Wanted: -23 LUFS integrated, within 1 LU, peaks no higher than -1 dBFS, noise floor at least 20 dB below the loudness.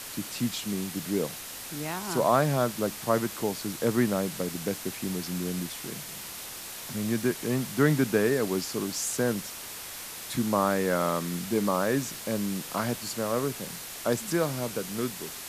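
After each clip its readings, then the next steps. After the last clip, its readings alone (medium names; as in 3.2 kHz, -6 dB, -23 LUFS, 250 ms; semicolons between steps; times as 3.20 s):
noise floor -40 dBFS; noise floor target -49 dBFS; loudness -29.0 LUFS; peak level -10.0 dBFS; loudness target -23.0 LUFS
-> noise print and reduce 9 dB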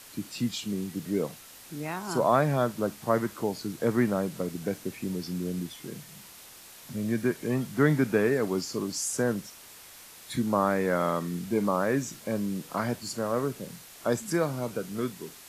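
noise floor -49 dBFS; loudness -29.0 LUFS; peak level -10.0 dBFS; loudness target -23.0 LUFS
-> trim +6 dB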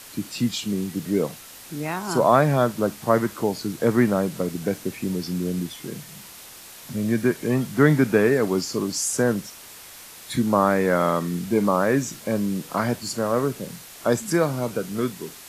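loudness -23.0 LUFS; peak level -4.0 dBFS; noise floor -43 dBFS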